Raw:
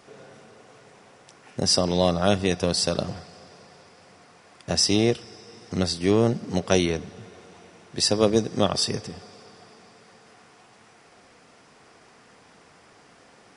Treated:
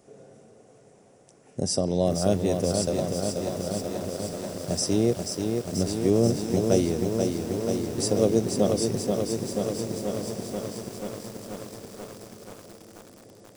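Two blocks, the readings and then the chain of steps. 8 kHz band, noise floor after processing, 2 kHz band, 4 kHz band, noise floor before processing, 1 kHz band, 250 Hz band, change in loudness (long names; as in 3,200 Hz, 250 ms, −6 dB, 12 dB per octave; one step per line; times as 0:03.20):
−1.5 dB, −55 dBFS, −8.5 dB, −8.5 dB, −54 dBFS, −4.0 dB, +1.0 dB, −3.0 dB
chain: flat-topped bell 2,100 Hz −12.5 dB 2.8 octaves
feedback delay with all-pass diffusion 1,612 ms, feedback 43%, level −11 dB
feedback echo at a low word length 484 ms, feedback 80%, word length 7 bits, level −4.5 dB
level −1.5 dB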